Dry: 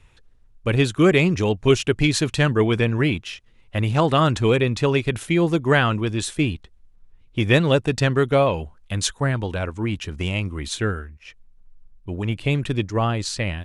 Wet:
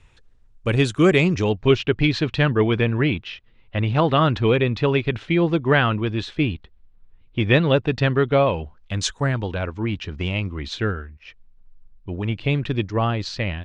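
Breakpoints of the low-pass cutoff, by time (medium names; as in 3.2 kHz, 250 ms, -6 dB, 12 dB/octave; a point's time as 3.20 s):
low-pass 24 dB/octave
1.11 s 9.1 kHz
1.76 s 4.2 kHz
8.54 s 4.2 kHz
9.21 s 8.2 kHz
9.51 s 4.9 kHz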